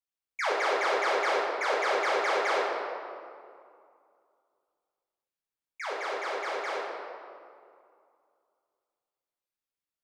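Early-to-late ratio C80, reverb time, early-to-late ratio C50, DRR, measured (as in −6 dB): 1.0 dB, 2.4 s, −0.5 dB, −5.5 dB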